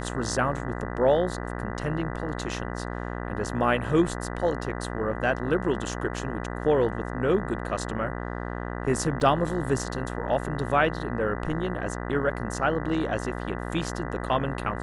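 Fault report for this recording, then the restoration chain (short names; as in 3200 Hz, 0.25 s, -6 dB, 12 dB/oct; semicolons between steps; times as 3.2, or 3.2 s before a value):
buzz 60 Hz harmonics 33 -33 dBFS
9.2 gap 3.3 ms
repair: de-hum 60 Hz, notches 33; interpolate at 9.2, 3.3 ms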